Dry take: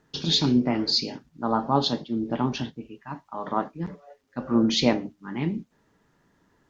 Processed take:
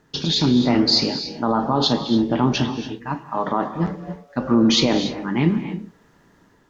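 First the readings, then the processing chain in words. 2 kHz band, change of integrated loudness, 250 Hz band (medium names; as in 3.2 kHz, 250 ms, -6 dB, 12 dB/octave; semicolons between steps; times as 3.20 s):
+6.5 dB, +5.5 dB, +6.5 dB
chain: peak limiter -17.5 dBFS, peak gain reduction 11 dB; level rider gain up to 4 dB; gated-style reverb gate 310 ms rising, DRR 9.5 dB; trim +5.5 dB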